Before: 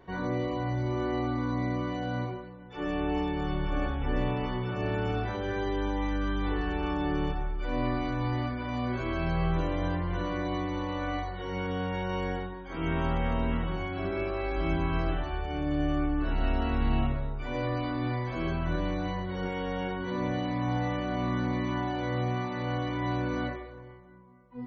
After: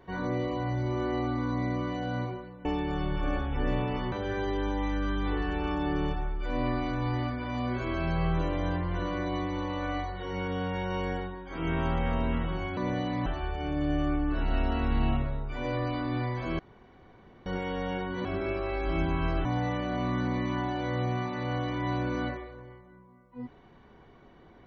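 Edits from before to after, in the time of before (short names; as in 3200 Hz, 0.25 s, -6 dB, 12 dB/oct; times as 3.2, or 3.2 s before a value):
2.65–3.14 cut
4.61–5.31 cut
13.96–15.16 swap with 20.15–20.64
18.49–19.36 room tone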